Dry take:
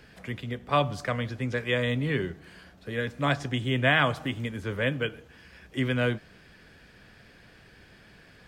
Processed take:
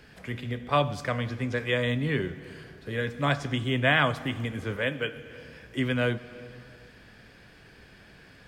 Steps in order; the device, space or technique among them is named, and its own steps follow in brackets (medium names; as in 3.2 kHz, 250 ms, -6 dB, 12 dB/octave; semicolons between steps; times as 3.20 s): compressed reverb return (on a send at -5 dB: reverberation RT60 1.6 s, pre-delay 18 ms + compression, threshold -34 dBFS, peak gain reduction 14.5 dB); 4.76–5.16 s: on the sum: bass shelf 190 Hz -10 dB